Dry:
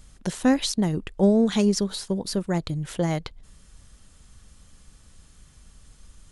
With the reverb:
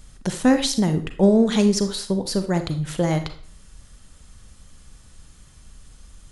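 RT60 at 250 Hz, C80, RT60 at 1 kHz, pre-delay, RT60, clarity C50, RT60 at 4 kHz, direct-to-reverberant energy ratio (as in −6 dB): 0.50 s, 15.5 dB, 0.50 s, 33 ms, 0.50 s, 10.5 dB, 0.40 s, 8.0 dB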